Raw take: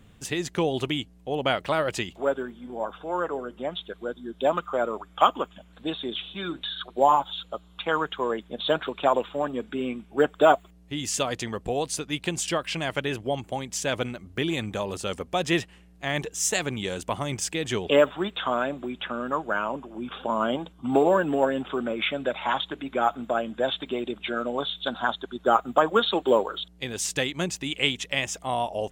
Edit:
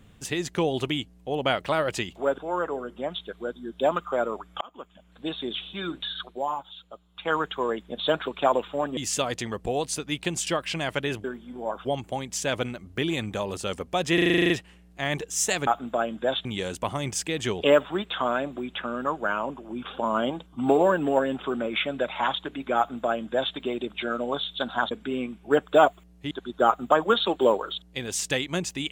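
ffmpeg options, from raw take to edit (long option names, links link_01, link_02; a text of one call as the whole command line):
ffmpeg -i in.wav -filter_complex "[0:a]asplit=21[link_01][link_02][link_03][link_04][link_05][link_06][link_07][link_08][link_09][link_10][link_11][link_12][link_13][link_14][link_15][link_16][link_17][link_18][link_19][link_20][link_21];[link_01]atrim=end=2.382[link_22];[link_02]atrim=start=2.988:end=5.22,asetpts=PTS-STARTPTS,afade=type=out:start_time=2.228:duration=0.004:curve=hsin[link_23];[link_03]atrim=start=5.22:end=7.02,asetpts=PTS-STARTPTS,afade=type=in:duration=0.79,afade=type=out:start_time=1.62:duration=0.18:silence=0.316228[link_24];[link_04]atrim=start=7.02:end=7.75,asetpts=PTS-STARTPTS,volume=-10dB[link_25];[link_05]atrim=start=7.75:end=9.582,asetpts=PTS-STARTPTS,afade=type=in:duration=0.18:silence=0.316228[link_26];[link_06]atrim=start=10.978:end=13.252[link_27];[link_07]atrim=start=2.378:end=2.992[link_28];[link_08]atrim=start=13.248:end=15.582[link_29];[link_09]atrim=start=15.538:end=15.582[link_30];[link_10]atrim=start=15.538:end=15.582[link_31];[link_11]atrim=start=15.538:end=15.582[link_32];[link_12]atrim=start=15.538:end=15.582[link_33];[link_13]atrim=start=15.538:end=15.582[link_34];[link_14]atrim=start=15.538:end=15.582[link_35];[link_15]atrim=start=15.538:end=15.582[link_36];[link_16]atrim=start=15.538:end=15.582[link_37];[link_17]atrim=start=15.538:end=16.712[link_38];[link_18]atrim=start=23.028:end=23.812[link_39];[link_19]atrim=start=16.708:end=25.172[link_40];[link_20]atrim=start=9.578:end=10.982[link_41];[link_21]atrim=start=25.168[link_42];[link_23][link_24][link_25][link_26]concat=n=4:v=0:a=1[link_43];[link_22][link_43]acrossfade=duration=0.004:curve1=hsin:curve2=hsin[link_44];[link_44][link_27]acrossfade=duration=0.004:curve1=hsin:curve2=hsin[link_45];[link_45][link_28]acrossfade=duration=0.004:curve1=hsin:curve2=hsin[link_46];[link_46][link_29]acrossfade=duration=0.004:curve1=hsin:curve2=hsin[link_47];[link_47][link_30]acrossfade=duration=0.004:curve1=hsin:curve2=hsin[link_48];[link_48][link_31]acrossfade=duration=0.004:curve1=hsin:curve2=hsin[link_49];[link_49][link_32]acrossfade=duration=0.004:curve1=hsin:curve2=hsin[link_50];[link_50][link_33]acrossfade=duration=0.004:curve1=hsin:curve2=hsin[link_51];[link_51][link_34]acrossfade=duration=0.004:curve1=hsin:curve2=hsin[link_52];[link_52][link_35]acrossfade=duration=0.004:curve1=hsin:curve2=hsin[link_53];[link_53][link_36]acrossfade=duration=0.004:curve1=hsin:curve2=hsin[link_54];[link_54][link_37]acrossfade=duration=0.004:curve1=hsin:curve2=hsin[link_55];[link_55][link_38]acrossfade=duration=0.004:curve1=hsin:curve2=hsin[link_56];[link_56][link_39]acrossfade=duration=0.004:curve1=hsin:curve2=hsin[link_57];[link_57][link_40]acrossfade=duration=0.004:curve1=hsin:curve2=hsin[link_58];[link_58][link_41]acrossfade=duration=0.004:curve1=hsin:curve2=hsin[link_59];[link_59][link_42]acrossfade=duration=0.004:curve1=hsin:curve2=hsin" out.wav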